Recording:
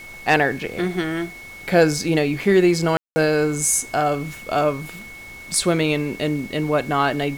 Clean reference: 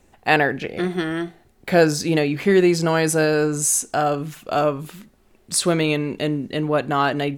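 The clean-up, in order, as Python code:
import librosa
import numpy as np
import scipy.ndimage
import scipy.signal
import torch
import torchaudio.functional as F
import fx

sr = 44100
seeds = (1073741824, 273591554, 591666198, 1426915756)

y = fx.fix_declip(x, sr, threshold_db=-6.0)
y = fx.notch(y, sr, hz=2200.0, q=30.0)
y = fx.fix_ambience(y, sr, seeds[0], print_start_s=5.01, print_end_s=5.51, start_s=2.97, end_s=3.16)
y = fx.noise_reduce(y, sr, print_start_s=5.01, print_end_s=5.51, reduce_db=15.0)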